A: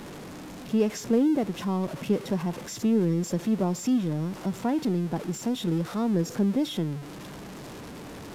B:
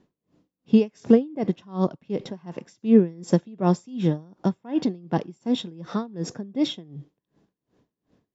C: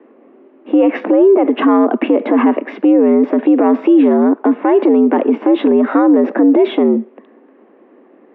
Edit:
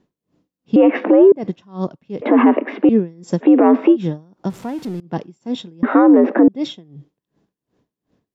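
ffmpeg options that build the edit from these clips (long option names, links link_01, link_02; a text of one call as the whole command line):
ffmpeg -i take0.wav -i take1.wav -i take2.wav -filter_complex "[2:a]asplit=4[link_01][link_02][link_03][link_04];[1:a]asplit=6[link_05][link_06][link_07][link_08][link_09][link_10];[link_05]atrim=end=0.762[link_11];[link_01]atrim=start=0.758:end=1.322[link_12];[link_06]atrim=start=1.318:end=2.222[link_13];[link_02]atrim=start=2.218:end=2.892[link_14];[link_07]atrim=start=2.888:end=3.46[link_15];[link_03]atrim=start=3.4:end=3.97[link_16];[link_08]atrim=start=3.91:end=4.502[link_17];[0:a]atrim=start=4.498:end=5.002[link_18];[link_09]atrim=start=4.998:end=5.832[link_19];[link_04]atrim=start=5.828:end=6.482[link_20];[link_10]atrim=start=6.478[link_21];[link_11][link_12]acrossfade=duration=0.004:curve1=hsin:curve2=hsin[link_22];[link_22][link_13]acrossfade=duration=0.004:curve1=hsin:curve2=hsin[link_23];[link_23][link_14]acrossfade=duration=0.004:curve1=hsin:curve2=hsin[link_24];[link_24][link_15]acrossfade=duration=0.004:curve1=hsin:curve2=hsin[link_25];[link_25][link_16]acrossfade=duration=0.06:curve1=tri:curve2=tri[link_26];[link_26][link_17]acrossfade=duration=0.06:curve1=tri:curve2=tri[link_27];[link_27][link_18]acrossfade=duration=0.004:curve1=hsin:curve2=hsin[link_28];[link_28][link_19]acrossfade=duration=0.004:curve1=hsin:curve2=hsin[link_29];[link_29][link_20]acrossfade=duration=0.004:curve1=hsin:curve2=hsin[link_30];[link_30][link_21]acrossfade=duration=0.004:curve1=hsin:curve2=hsin" out.wav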